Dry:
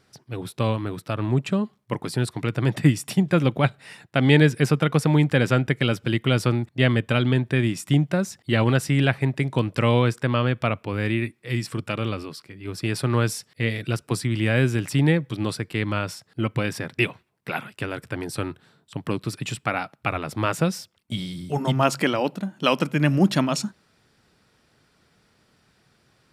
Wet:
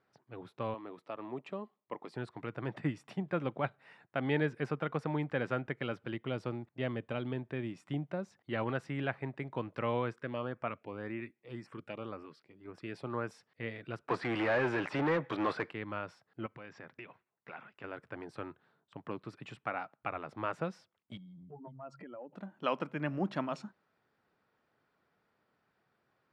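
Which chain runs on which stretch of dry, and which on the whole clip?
0:00.74–0:02.16: high-pass filter 260 Hz + parametric band 1,500 Hz −9.5 dB 0.3 octaves
0:06.14–0:08.36: dynamic equaliser 1,500 Hz, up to −6 dB, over −39 dBFS, Q 1.1 + hard clipping −9 dBFS
0:10.15–0:13.34: parametric band 110 Hz −3 dB 0.75 octaves + auto-filter notch saw up 1.9 Hz 590–4,600 Hz
0:14.08–0:15.71: de-essing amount 85% + mid-hump overdrive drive 27 dB, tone 3,400 Hz, clips at −9 dBFS
0:16.46–0:17.84: downward compressor 5 to 1, threshold −27 dBFS + Chebyshev low-pass with heavy ripple 7,500 Hz, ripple 3 dB
0:21.17–0:22.33: expanding power law on the bin magnitudes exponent 2 + downward compressor 5 to 1, threshold −32 dBFS
whole clip: low-pass filter 1,100 Hz 12 dB per octave; spectral tilt +4 dB per octave; level −7.5 dB

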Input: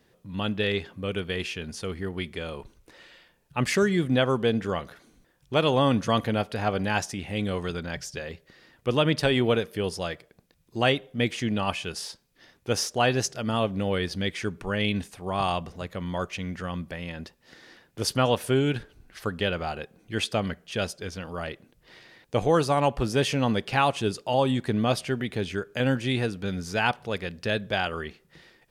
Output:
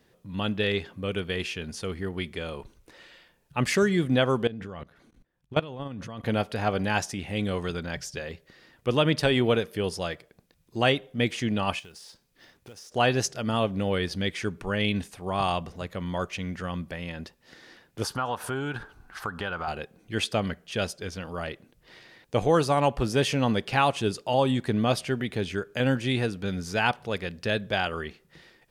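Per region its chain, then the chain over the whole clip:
0:04.47–0:06.26: output level in coarse steps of 20 dB + bass and treble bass +5 dB, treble −7 dB
0:11.79–0:12.92: downward compressor 10 to 1, threshold −43 dBFS + floating-point word with a short mantissa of 2 bits
0:18.03–0:19.68: flat-topped bell 1,100 Hz +11.5 dB 1.3 octaves + downward compressor 2.5 to 1, threshold −31 dBFS
whole clip: no processing

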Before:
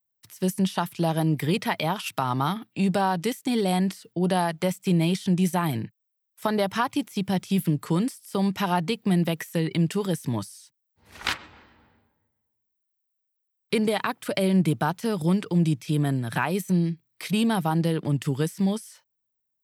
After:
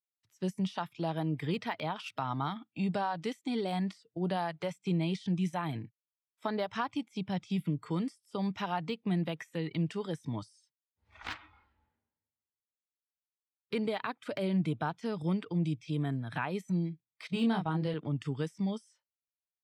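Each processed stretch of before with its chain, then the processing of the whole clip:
0:17.27–0:17.94: low-pass filter 9,800 Hz 24 dB per octave + noise gate −28 dBFS, range −13 dB + double-tracking delay 26 ms −4.5 dB
whole clip: low-pass filter 5,100 Hz 12 dB per octave; noise reduction from a noise print of the clip's start 13 dB; de-essing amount 80%; level −8.5 dB

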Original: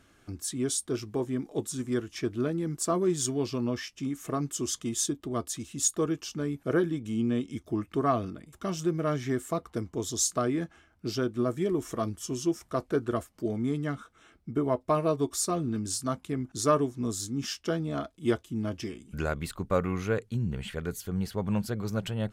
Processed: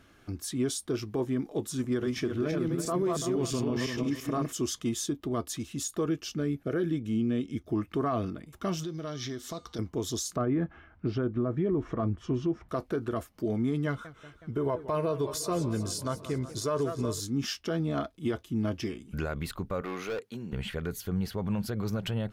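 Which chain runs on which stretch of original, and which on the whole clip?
0:01.84–0:04.53: feedback delay that plays each chunk backwards 169 ms, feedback 45%, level −2.5 dB + upward compression, threshold −38 dBFS + one half of a high-frequency compander decoder only
0:06.09–0:07.69: parametric band 960 Hz −10.5 dB 0.41 octaves + one half of a high-frequency compander decoder only
0:08.83–0:09.79: downward compressor 3 to 1, threshold −39 dBFS + flat-topped bell 4,500 Hz +13 dB 1.2 octaves + hum removal 241.6 Hz, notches 37
0:10.36–0:12.69: low-pass filter 1,800 Hz + low-shelf EQ 180 Hz +7.5 dB + one half of a high-frequency compander encoder only
0:13.86–0:17.20: comb filter 2 ms, depth 45% + feedback echo with a swinging delay time 185 ms, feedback 69%, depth 182 cents, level −17 dB
0:19.81–0:20.53: high-pass filter 340 Hz + hard clipping −33 dBFS
whole clip: brickwall limiter −23.5 dBFS; parametric band 8,000 Hz −7 dB 0.7 octaves; level +2.5 dB

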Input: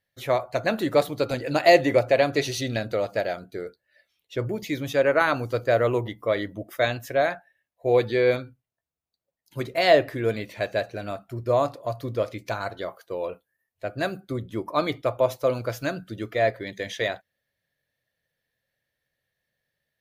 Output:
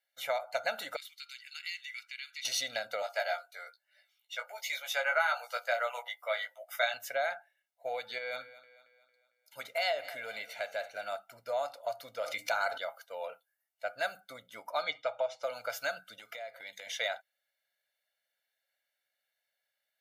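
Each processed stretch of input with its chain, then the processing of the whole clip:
0:00.96–0:02.45: inverse Chebyshev high-pass filter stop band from 670 Hz, stop band 60 dB + high-shelf EQ 4,400 Hz −10.5 dB + downward compressor 2 to 1, threshold −40 dBFS
0:03.02–0:06.94: high-pass filter 620 Hz 24 dB per octave + double-tracking delay 17 ms −5 dB
0:08.18–0:11.12: downward compressor 2.5 to 1, threshold −27 dBFS + feedback echo with a high-pass in the loop 226 ms, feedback 49%, high-pass 150 Hz, level −17.5 dB
0:12.19–0:12.78: mains-hum notches 60/120/180/240/300/360 Hz + envelope flattener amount 50%
0:14.83–0:15.43: low-pass filter 6,400 Hz 24 dB per octave + comb filter 6.3 ms, depth 50%
0:16.19–0:16.87: high-pass filter 48 Hz + parametric band 11,000 Hz +4.5 dB 2.1 octaves + downward compressor 12 to 1, threshold −34 dBFS
whole clip: downward compressor 6 to 1, threshold −23 dBFS; high-pass filter 830 Hz 12 dB per octave; comb filter 1.4 ms, depth 93%; level −3.5 dB

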